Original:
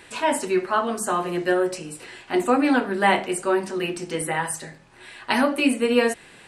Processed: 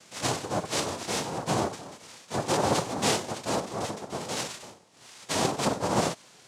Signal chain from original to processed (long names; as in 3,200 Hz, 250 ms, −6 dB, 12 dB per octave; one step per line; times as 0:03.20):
cochlear-implant simulation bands 2
harmonic and percussive parts rebalanced percussive −6 dB
level −3.5 dB